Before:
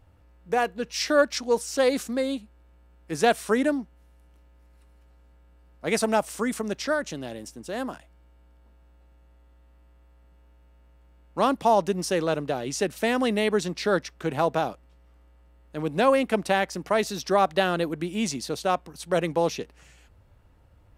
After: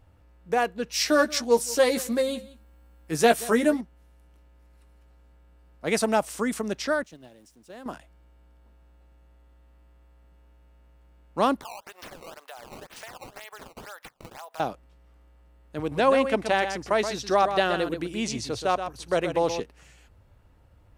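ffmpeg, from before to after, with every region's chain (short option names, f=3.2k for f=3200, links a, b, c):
-filter_complex "[0:a]asettb=1/sr,asplit=3[a][b][c];[a]atrim=end=0.914[d];[b]atrim=start=0.91:end=3.81,asetpts=PTS-STARTPTS,afade=t=in:d=0.004:c=qsin,afade=t=out:st=2.896:d=0.004:c=qsin,highshelf=f=11k:g=11.5,asplit=2[e][f];[f]adelay=13,volume=-5dB[g];[e][g]amix=inputs=2:normalize=0,atrim=end_sample=127890,aecho=1:1:179:0.1,atrim=end_sample=127890[h];[c]atrim=start=3.806[i];[d][h]acrossfade=d=0.004:c1=hsin:c2=qsin[j];[j][i]acrossfade=d=0.004:c1=qsin:c2=hsin,asettb=1/sr,asplit=3[k][l][m];[k]atrim=end=7.034[n];[l]atrim=start=7.03:end=7.86,asetpts=PTS-STARTPTS,afade=t=in:d=0.004:c=qsin,afade=t=out:st=0.826:d=0.004:c=qsin,aeval=exprs='val(0)+0.5*0.00668*sgn(val(0))':c=same,agate=range=-17dB:threshold=-32dB:ratio=16:release=100:detection=peak,acompressor=threshold=-41dB:ratio=5:attack=3.2:release=140:knee=1:detection=peak[o];[m]atrim=start=7.856[p];[n][o]acrossfade=d=0.004:c1=hsin:c2=qsin[q];[q][p]acrossfade=d=0.004:c1=qsin:c2=hsin,asettb=1/sr,asplit=3[r][s][t];[r]atrim=end=11.614[u];[s]atrim=start=11.61:end=14.6,asetpts=PTS-STARTPTS,afade=t=in:d=0.004:c=qsin,afade=t=out:st=2.986:d=0.004:c=qsin,highpass=f=740:w=0.5412,highpass=f=740:w=1.3066,acompressor=threshold=-39dB:ratio=6:attack=3.2:release=140:knee=1:detection=peak,acrusher=samples=15:mix=1:aa=0.000001:lfo=1:lforange=24:lforate=2[v];[t]atrim=start=14.596[w];[u][v]acrossfade=d=0.004:c1=hsin:c2=qsin[x];[x][w]acrossfade=d=0.004:c1=qsin:c2=hsin,asettb=1/sr,asplit=3[y][z][aa];[y]atrim=end=15.794[ab];[z]atrim=start=15.79:end=19.6,asetpts=PTS-STARTPTS,afade=t=in:d=0.004:c=qsin,afade=t=out:st=3.806:d=0.004:c=qsin,acrossover=split=8700[ac][ad];[ad]acompressor=threshold=-59dB:ratio=4:attack=1:release=60[ae];[ac][ae]amix=inputs=2:normalize=0,lowshelf=f=130:t=q:w=3:g=7,aecho=1:1:126:0.376,atrim=end_sample=168021[af];[aa]atrim=start=19.596[ag];[ab][af]acrossfade=d=0.004:c1=hsin:c2=qsin[ah];[ah][ag]acrossfade=d=0.004:c1=qsin:c2=hsin"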